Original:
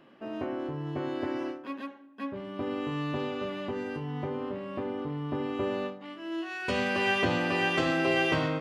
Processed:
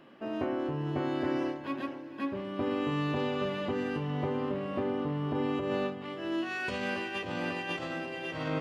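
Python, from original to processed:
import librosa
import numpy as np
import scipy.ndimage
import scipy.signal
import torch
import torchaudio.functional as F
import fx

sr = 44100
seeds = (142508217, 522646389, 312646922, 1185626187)

y = fx.over_compress(x, sr, threshold_db=-31.0, ratio=-0.5)
y = fx.echo_diffused(y, sr, ms=510, feedback_pct=40, wet_db=-12)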